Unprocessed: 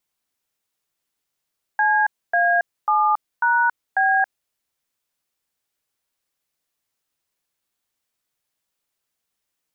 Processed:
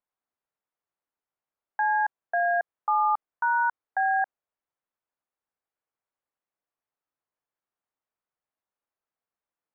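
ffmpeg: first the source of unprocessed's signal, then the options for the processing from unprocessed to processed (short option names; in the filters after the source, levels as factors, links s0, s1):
-f lavfi -i "aevalsrc='0.133*clip(min(mod(t,0.544),0.276-mod(t,0.544))/0.002,0,1)*(eq(floor(t/0.544),0)*(sin(2*PI*852*mod(t,0.544))+sin(2*PI*1633*mod(t,0.544)))+eq(floor(t/0.544),1)*(sin(2*PI*697*mod(t,0.544))+sin(2*PI*1633*mod(t,0.544)))+eq(floor(t/0.544),2)*(sin(2*PI*852*mod(t,0.544))+sin(2*PI*1209*mod(t,0.544)))+eq(floor(t/0.544),3)*(sin(2*PI*941*mod(t,0.544))+sin(2*PI*1477*mod(t,0.544)))+eq(floor(t/0.544),4)*(sin(2*PI*770*mod(t,0.544))+sin(2*PI*1633*mod(t,0.544))))':d=2.72:s=44100"
-af "lowpass=1100,lowshelf=f=480:g=-12"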